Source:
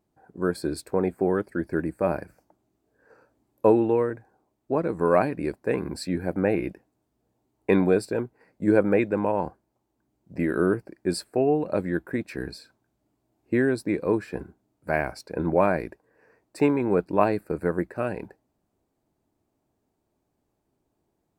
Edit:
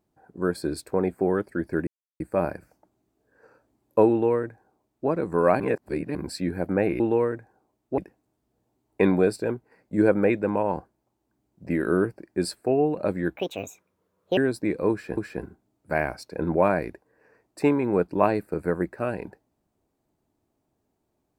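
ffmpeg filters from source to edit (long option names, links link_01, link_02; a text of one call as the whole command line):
ffmpeg -i in.wav -filter_complex "[0:a]asplit=9[link_01][link_02][link_03][link_04][link_05][link_06][link_07][link_08][link_09];[link_01]atrim=end=1.87,asetpts=PTS-STARTPTS,afade=type=out:start_time=1.866:duration=0.004:curve=hsin,apad=pad_dur=0.33[link_10];[link_02]atrim=start=1.87:end=5.272,asetpts=PTS-STARTPTS,afade=type=in:duration=0.004:curve=hsin[link_11];[link_03]atrim=start=5.268:end=5.822,asetpts=PTS-STARTPTS,areverse[link_12];[link_04]atrim=start=5.818:end=6.672[link_13];[link_05]atrim=start=3.778:end=4.762[link_14];[link_06]atrim=start=6.668:end=12.054[link_15];[link_07]atrim=start=12.05:end=13.61,asetpts=PTS-STARTPTS,asetrate=67914,aresample=44100[link_16];[link_08]atrim=start=13.606:end=14.412[link_17];[link_09]atrim=start=14.148[link_18];[link_10][link_11]concat=n=2:v=0:a=1[link_19];[link_19][link_12]acrossfade=duration=0.004:curve1=hsin:curve2=hsin[link_20];[link_20][link_13]acrossfade=duration=0.004:curve1=hsin:curve2=hsin[link_21];[link_21][link_14]acrossfade=duration=0.004:curve1=hsin:curve2=hsin[link_22];[link_22][link_15]acrossfade=duration=0.004:curve1=hsin:curve2=hsin[link_23];[link_23][link_16]acrossfade=duration=0.004:curve1=hsin:curve2=hsin[link_24];[link_24][link_17]acrossfade=duration=0.004:curve1=hsin:curve2=hsin[link_25];[link_25][link_18]acrossfade=duration=0.004:curve1=hsin:curve2=hsin" out.wav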